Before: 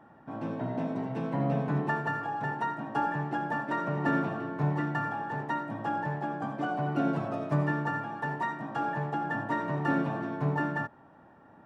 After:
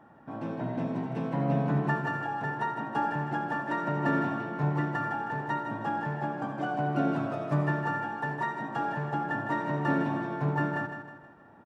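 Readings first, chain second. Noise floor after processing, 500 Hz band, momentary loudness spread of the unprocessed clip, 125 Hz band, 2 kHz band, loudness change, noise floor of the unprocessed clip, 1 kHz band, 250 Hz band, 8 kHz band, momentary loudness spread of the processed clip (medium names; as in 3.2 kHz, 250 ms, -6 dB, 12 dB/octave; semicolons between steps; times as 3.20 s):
-54 dBFS, +0.5 dB, 5 LU, +1.0 dB, +0.5 dB, +1.0 dB, -56 dBFS, +1.0 dB, +0.5 dB, no reading, 5 LU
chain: feedback delay 158 ms, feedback 43%, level -8 dB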